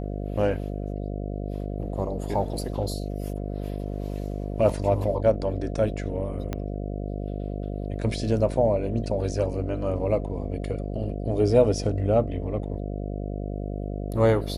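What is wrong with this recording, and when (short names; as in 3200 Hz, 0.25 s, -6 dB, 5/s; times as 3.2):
buzz 50 Hz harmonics 14 -31 dBFS
6.53 pop -15 dBFS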